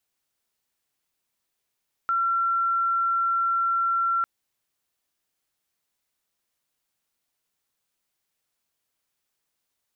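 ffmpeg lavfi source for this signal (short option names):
-f lavfi -i "aevalsrc='0.0944*sin(2*PI*1360*t)':d=2.15:s=44100"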